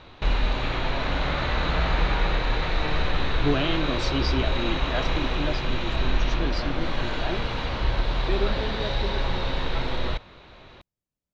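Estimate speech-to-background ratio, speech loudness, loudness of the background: -4.5 dB, -32.0 LUFS, -27.5 LUFS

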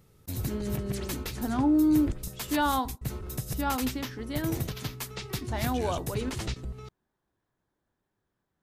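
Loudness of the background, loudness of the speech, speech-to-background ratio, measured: -36.0 LUFS, -30.0 LUFS, 6.0 dB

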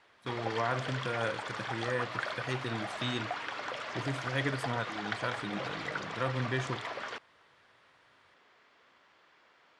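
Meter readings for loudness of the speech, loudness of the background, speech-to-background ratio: -37.0 LUFS, -38.0 LUFS, 1.0 dB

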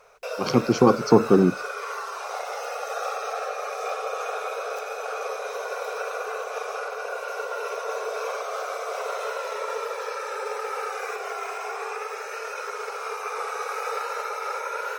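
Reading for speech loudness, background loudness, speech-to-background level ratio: -20.0 LUFS, -31.0 LUFS, 11.0 dB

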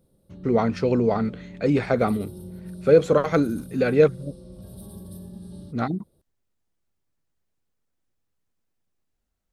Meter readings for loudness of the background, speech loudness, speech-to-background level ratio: -41.0 LUFS, -22.5 LUFS, 18.5 dB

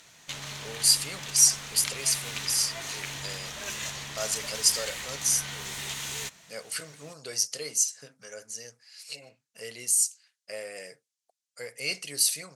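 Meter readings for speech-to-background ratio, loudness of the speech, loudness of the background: 9.5 dB, -25.5 LUFS, -35.0 LUFS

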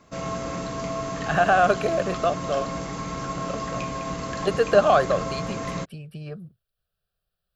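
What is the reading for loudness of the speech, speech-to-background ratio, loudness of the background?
-22.5 LUFS, 8.5 dB, -31.0 LUFS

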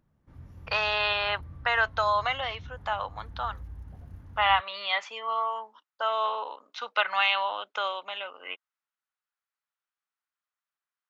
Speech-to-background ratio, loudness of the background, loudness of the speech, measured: 19.0 dB, -47.0 LUFS, -28.0 LUFS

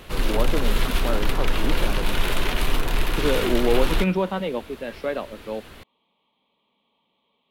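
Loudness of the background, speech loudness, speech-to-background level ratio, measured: -26.0 LUFS, -28.0 LUFS, -2.0 dB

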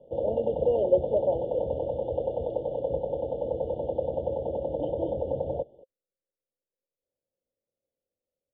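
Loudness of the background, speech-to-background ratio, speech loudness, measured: -31.0 LUFS, 2.5 dB, -28.5 LUFS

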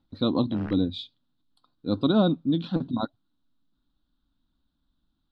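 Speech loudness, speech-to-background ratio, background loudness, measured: -26.0 LUFS, 19.0 dB, -45.0 LUFS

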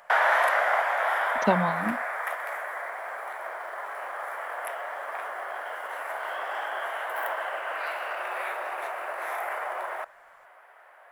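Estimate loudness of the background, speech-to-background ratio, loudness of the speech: -29.5 LUFS, 1.0 dB, -28.5 LUFS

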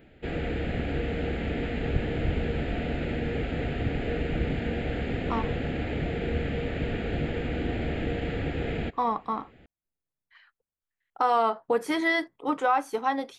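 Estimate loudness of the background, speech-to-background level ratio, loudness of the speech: -30.5 LUFS, 3.0 dB, -27.5 LUFS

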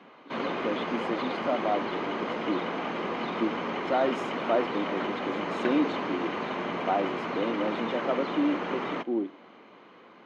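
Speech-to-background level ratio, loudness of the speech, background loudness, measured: 0.0 dB, -32.0 LUFS, -32.0 LUFS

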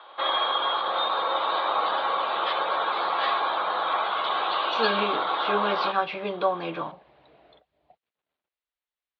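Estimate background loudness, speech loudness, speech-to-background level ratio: -25.5 LUFS, -29.0 LUFS, -3.5 dB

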